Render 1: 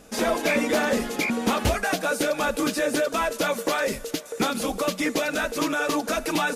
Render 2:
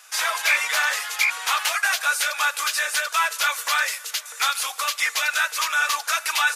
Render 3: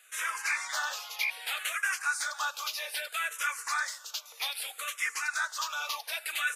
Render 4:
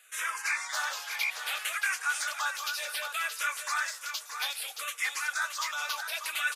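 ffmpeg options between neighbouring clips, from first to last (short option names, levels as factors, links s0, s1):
-af "highpass=f=1100:w=0.5412,highpass=f=1100:w=1.3066,volume=2.24"
-filter_complex "[0:a]asplit=2[s0][s1];[s1]afreqshift=-0.63[s2];[s0][s2]amix=inputs=2:normalize=1,volume=0.422"
-af "aecho=1:1:624:0.398"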